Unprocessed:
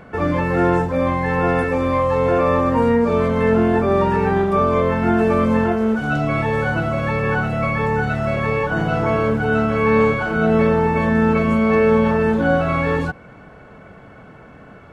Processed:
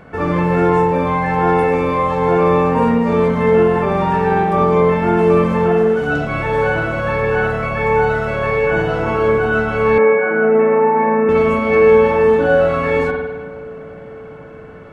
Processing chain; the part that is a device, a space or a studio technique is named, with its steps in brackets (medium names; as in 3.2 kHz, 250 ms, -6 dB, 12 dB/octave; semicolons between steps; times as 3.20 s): dub delay into a spring reverb (filtered feedback delay 471 ms, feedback 78%, low-pass 1.1 kHz, level -21 dB; spring tank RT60 1.1 s, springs 52 ms, chirp 75 ms, DRR 0.5 dB); 9.98–11.29 s: elliptic band-pass 200–2100 Hz, stop band 50 dB